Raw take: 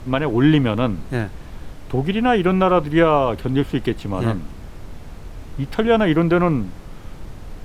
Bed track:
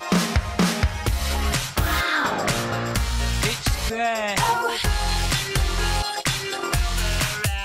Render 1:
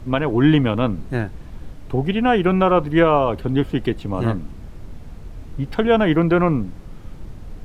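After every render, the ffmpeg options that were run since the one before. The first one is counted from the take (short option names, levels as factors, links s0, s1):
-af "afftdn=nr=6:nf=-37"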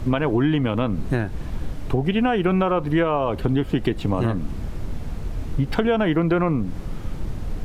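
-filter_complex "[0:a]asplit=2[s0][s1];[s1]alimiter=limit=0.282:level=0:latency=1:release=109,volume=1.26[s2];[s0][s2]amix=inputs=2:normalize=0,acompressor=threshold=0.141:ratio=6"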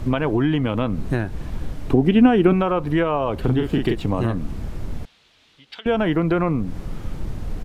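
-filter_complex "[0:a]asettb=1/sr,asplit=3[s0][s1][s2];[s0]atrim=end=1.904[s3];[s1]atrim=start=1.9:end=2.53,asetpts=PTS-STARTPTS,afade=t=in:d=0.004:c=qsin,afade=t=out:st=0.626:d=0.004:c=qsin,equalizer=f=280:w=1.5:g=10.5[s4];[s2]atrim=start=2.526[s5];[s3][s4]acrossfade=d=0.004:c1=hsin:c2=qsin[s6];[s6][s5]acrossfade=d=0.004:c1=qsin:c2=hsin,asplit=3[s7][s8][s9];[s7]afade=t=out:st=3.43:d=0.02[s10];[s8]asplit=2[s11][s12];[s12]adelay=40,volume=0.668[s13];[s11][s13]amix=inputs=2:normalize=0,afade=t=in:st=3.43:d=0.02,afade=t=out:st=3.94:d=0.02[s14];[s9]afade=t=in:st=3.94:d=0.02[s15];[s10][s14][s15]amix=inputs=3:normalize=0,asettb=1/sr,asplit=3[s16][s17][s18];[s16]atrim=end=5.054[s19];[s17]atrim=start=5.05:end=5.86,asetpts=PTS-STARTPTS,afade=t=in:d=0.004:c=qsin,afade=t=out:st=0.806:d=0.004:c=qsin,bandpass=f=3500:t=q:w=2.3[s20];[s18]atrim=start=5.856[s21];[s19][s20]acrossfade=d=0.004:c1=hsin:c2=qsin[s22];[s22][s21]acrossfade=d=0.004:c1=qsin:c2=hsin"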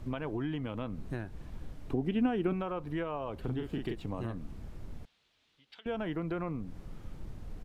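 -af "volume=0.168"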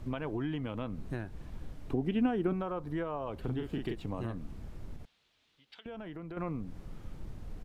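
-filter_complex "[0:a]asettb=1/sr,asplit=3[s0][s1][s2];[s0]atrim=end=2.314[s3];[s1]atrim=start=2.31:end=3.27,asetpts=PTS-STARTPTS,afade=t=in:d=0.004:c=qsin,afade=t=out:st=0.956:d=0.004:c=qsin,equalizer=f=2600:w=2.4:g=-7.5[s4];[s2]atrim=start=3.266[s5];[s3][s4]acrossfade=d=0.004:c1=hsin:c2=qsin[s6];[s6][s5]acrossfade=d=0.004:c1=qsin:c2=hsin,asettb=1/sr,asplit=3[s7][s8][s9];[s7]atrim=end=4.964[s10];[s8]atrim=start=4.96:end=6.37,asetpts=PTS-STARTPTS,afade=t=in:d=0.004:c=qsin,afade=t=out:st=1.406:d=0.004:c=qsin,acompressor=threshold=0.01:ratio=6:attack=3.2:release=140:knee=1:detection=peak[s11];[s9]atrim=start=6.366[s12];[s10][s11]acrossfade=d=0.004:c1=hsin:c2=qsin[s13];[s13][s12]acrossfade=d=0.004:c1=qsin:c2=hsin"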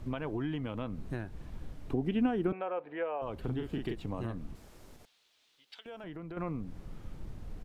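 -filter_complex "[0:a]asettb=1/sr,asplit=3[s0][s1][s2];[s0]atrim=end=2.524[s3];[s1]atrim=start=2.52:end=3.22,asetpts=PTS-STARTPTS,afade=t=in:d=0.004:c=qsin,afade=t=out:st=0.696:d=0.004:c=qsin,highpass=470,equalizer=f=500:t=q:w=4:g=7,equalizer=f=770:t=q:w=4:g=5,equalizer=f=1100:t=q:w=4:g=-5,equalizer=f=1700:t=q:w=4:g=3,equalizer=f=2500:t=q:w=4:g=9,lowpass=f=3000:w=0.5412,lowpass=f=3000:w=1.3066[s4];[s2]atrim=start=3.216[s5];[s3][s4]acrossfade=d=0.004:c1=hsin:c2=qsin[s6];[s6][s5]acrossfade=d=0.004:c1=qsin:c2=hsin,asettb=1/sr,asplit=3[s7][s8][s9];[s7]atrim=end=4.554[s10];[s8]atrim=start=4.55:end=6.04,asetpts=PTS-STARTPTS,afade=t=in:d=0.004:c=qsin,afade=t=out:st=1.486:d=0.004:c=qsin,bass=f=250:g=-13,treble=f=4000:g=8[s11];[s9]atrim=start=6.036[s12];[s10][s11]acrossfade=d=0.004:c1=hsin:c2=qsin[s13];[s13][s12]acrossfade=d=0.004:c1=qsin:c2=hsin"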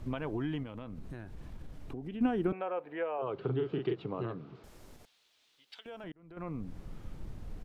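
-filter_complex "[0:a]asettb=1/sr,asplit=3[s0][s1][s2];[s0]atrim=end=0.634[s3];[s1]atrim=start=0.63:end=2.21,asetpts=PTS-STARTPTS,afade=t=in:d=0.004:c=qsin,afade=t=out:st=1.576:d=0.004:c=qsin,acompressor=threshold=0.01:ratio=3:attack=3.2:release=140:knee=1:detection=peak[s4];[s2]atrim=start=2.206[s5];[s3][s4]acrossfade=d=0.004:c1=hsin:c2=qsin[s6];[s6][s5]acrossfade=d=0.004:c1=qsin:c2=hsin,asettb=1/sr,asplit=3[s7][s8][s9];[s7]atrim=end=3.184[s10];[s8]atrim=start=3.18:end=4.64,asetpts=PTS-STARTPTS,afade=t=in:d=0.004:c=qsin,afade=t=out:st=1.456:d=0.004:c=qsin,highpass=f=130:w=0.5412,highpass=f=130:w=1.3066,equalizer=f=130:t=q:w=4:g=6,equalizer=f=230:t=q:w=4:g=-8,equalizer=f=410:t=q:w=4:g=10,equalizer=f=1300:t=q:w=4:g=7,equalizer=f=1800:t=q:w=4:g=-4,lowpass=f=4200:w=0.5412,lowpass=f=4200:w=1.3066[s11];[s9]atrim=start=4.636[s12];[s10][s11]acrossfade=d=0.004:c1=hsin:c2=qsin[s13];[s13][s12]acrossfade=d=0.004:c1=qsin:c2=hsin,asplit=2[s14][s15];[s14]atrim=end=6.12,asetpts=PTS-STARTPTS,afade=t=out:st=6.116:d=0.004:c=hsin[s16];[s15]atrim=start=6.12,asetpts=PTS-STARTPTS,afade=t=in:d=0.53[s17];[s16][s17]concat=n=2:v=0:a=1"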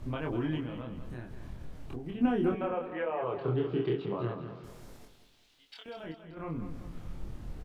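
-filter_complex "[0:a]asplit=2[s0][s1];[s1]adelay=25,volume=0.794[s2];[s0][s2]amix=inputs=2:normalize=0,aecho=1:1:193|386|579|772:0.316|0.133|0.0558|0.0234"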